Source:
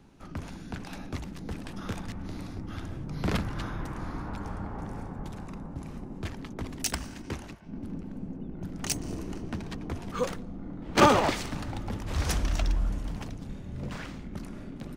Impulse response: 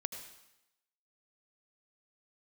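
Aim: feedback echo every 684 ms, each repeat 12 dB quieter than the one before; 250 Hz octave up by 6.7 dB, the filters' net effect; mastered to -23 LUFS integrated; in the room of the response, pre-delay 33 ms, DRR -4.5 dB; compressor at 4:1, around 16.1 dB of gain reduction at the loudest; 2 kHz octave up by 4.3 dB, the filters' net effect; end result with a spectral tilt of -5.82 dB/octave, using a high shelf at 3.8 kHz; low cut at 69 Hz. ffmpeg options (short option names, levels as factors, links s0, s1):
-filter_complex "[0:a]highpass=69,equalizer=f=250:t=o:g=8.5,equalizer=f=2000:t=o:g=6.5,highshelf=f=3800:g=-4.5,acompressor=threshold=0.0316:ratio=4,aecho=1:1:684|1368|2052:0.251|0.0628|0.0157,asplit=2[s0][s1];[1:a]atrim=start_sample=2205,adelay=33[s2];[s1][s2]afir=irnorm=-1:irlink=0,volume=1.68[s3];[s0][s3]amix=inputs=2:normalize=0,volume=2.11"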